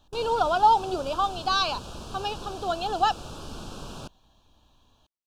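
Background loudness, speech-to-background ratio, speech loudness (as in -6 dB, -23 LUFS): -40.5 LUFS, 14.5 dB, -26.0 LUFS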